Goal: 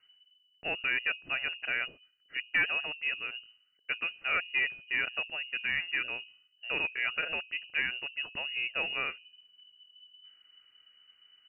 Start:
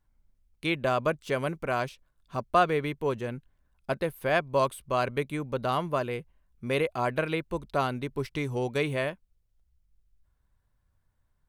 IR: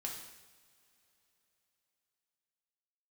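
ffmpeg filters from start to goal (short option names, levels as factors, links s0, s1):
-af "equalizer=f=2100:t=o:w=0.37:g=-11.5,crystalizer=i=7:c=0,areverse,acompressor=mode=upward:threshold=0.0112:ratio=2.5,areverse,bandreject=f=58.55:t=h:w=4,bandreject=f=117.1:t=h:w=4,bandreject=f=175.65:t=h:w=4,bandreject=f=234.2:t=h:w=4,bandreject=f=292.75:t=h:w=4,bandreject=f=351.3:t=h:w=4,bandreject=f=409.85:t=h:w=4,bandreject=f=468.4:t=h:w=4,bandreject=f=526.95:t=h:w=4,aresample=16000,asoftclip=type=tanh:threshold=0.178,aresample=44100,lowpass=f=2600:t=q:w=0.5098,lowpass=f=2600:t=q:w=0.6013,lowpass=f=2600:t=q:w=0.9,lowpass=f=2600:t=q:w=2.563,afreqshift=-3000,volume=0.562"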